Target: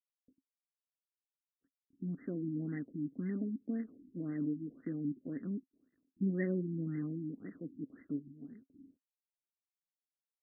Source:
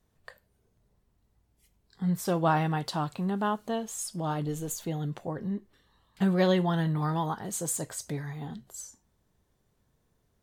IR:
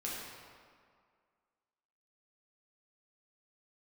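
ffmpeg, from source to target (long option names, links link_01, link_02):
-filter_complex "[0:a]highshelf=frequency=1900:width_type=q:width=3:gain=10,dynaudnorm=framelen=260:gausssize=17:maxgain=10dB,acrusher=bits=5:dc=4:mix=0:aa=0.000001,asplit=3[link_01][link_02][link_03];[link_01]bandpass=frequency=270:width_type=q:width=8,volume=0dB[link_04];[link_02]bandpass=frequency=2290:width_type=q:width=8,volume=-6dB[link_05];[link_03]bandpass=frequency=3010:width_type=q:width=8,volume=-9dB[link_06];[link_04][link_05][link_06]amix=inputs=3:normalize=0,afftfilt=real='re*lt(b*sr/1024,350*pow(2100/350,0.5+0.5*sin(2*PI*1.9*pts/sr)))':imag='im*lt(b*sr/1024,350*pow(2100/350,0.5+0.5*sin(2*PI*1.9*pts/sr)))':win_size=1024:overlap=0.75"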